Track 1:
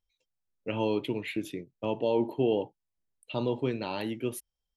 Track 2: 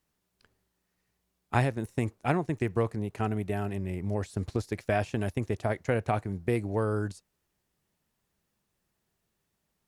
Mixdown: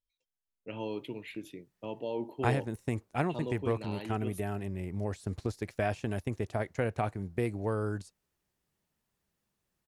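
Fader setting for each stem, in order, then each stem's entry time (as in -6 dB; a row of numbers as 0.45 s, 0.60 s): -8.5 dB, -3.5 dB; 0.00 s, 0.90 s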